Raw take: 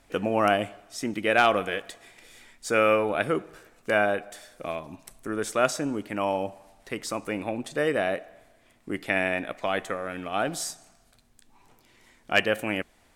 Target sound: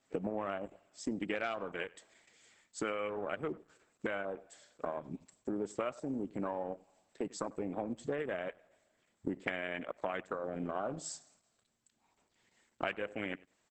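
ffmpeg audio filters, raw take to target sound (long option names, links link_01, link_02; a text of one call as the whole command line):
ffmpeg -i in.wav -filter_complex "[0:a]highpass=frequency=120:width=0.5412,highpass=frequency=120:width=1.3066,afwtdn=0.0316,highshelf=frequency=2800:gain=2.5,acompressor=threshold=-35dB:ratio=12,asetrate=42336,aresample=44100,aexciter=amount=5.9:drive=7.7:freq=8700,asplit=2[link_01][link_02];[link_02]adelay=97,lowpass=frequency=3900:poles=1,volume=-21dB,asplit=2[link_03][link_04];[link_04]adelay=97,lowpass=frequency=3900:poles=1,volume=0.15[link_05];[link_01][link_03][link_05]amix=inputs=3:normalize=0,volume=2.5dB" -ar 48000 -c:a libopus -b:a 10k out.opus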